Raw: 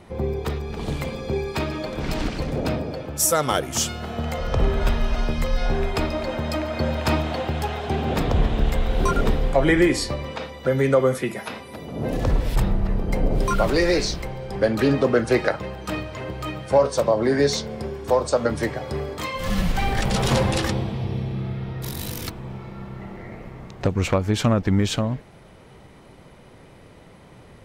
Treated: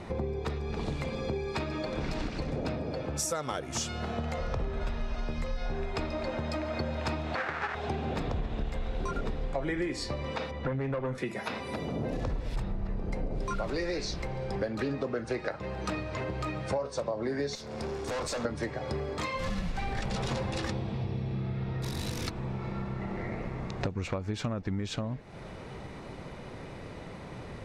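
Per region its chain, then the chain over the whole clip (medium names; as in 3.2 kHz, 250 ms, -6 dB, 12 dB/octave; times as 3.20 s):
7.35–7.75 s: square wave that keeps the level + resonant low-pass 1.6 kHz, resonance Q 2.3 + tilt EQ +4.5 dB/octave
10.51–11.18 s: tone controls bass +6 dB, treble -14 dB + valve stage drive 15 dB, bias 0.65
17.55–18.45 s: tone controls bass -2 dB, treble +8 dB + valve stage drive 33 dB, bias 0.7
whole clip: low-pass 7 kHz 12 dB/octave; band-stop 3.1 kHz, Q 15; compression 5:1, threshold -36 dBFS; trim +4.5 dB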